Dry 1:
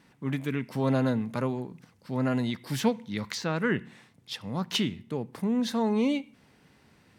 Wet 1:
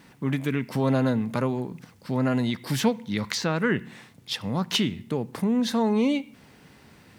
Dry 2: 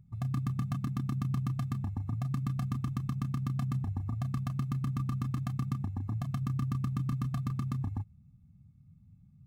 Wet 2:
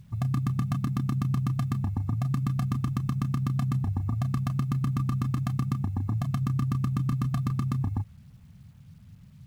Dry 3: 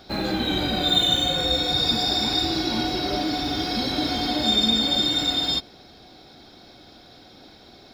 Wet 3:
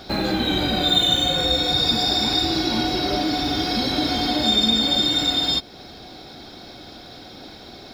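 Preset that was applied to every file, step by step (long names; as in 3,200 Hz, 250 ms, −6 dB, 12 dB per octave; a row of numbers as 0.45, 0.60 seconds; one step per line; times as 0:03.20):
in parallel at +3 dB: downward compressor 12 to 1, threshold −33 dBFS
on the sum: bit reduction 11 bits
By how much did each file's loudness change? +3.5, +5.5, +2.5 LU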